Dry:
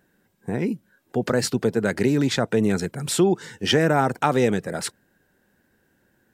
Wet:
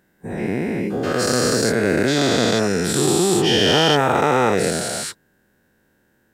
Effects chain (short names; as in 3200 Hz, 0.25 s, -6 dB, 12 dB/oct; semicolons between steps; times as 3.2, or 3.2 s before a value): spectral dilation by 0.48 s; gain -4 dB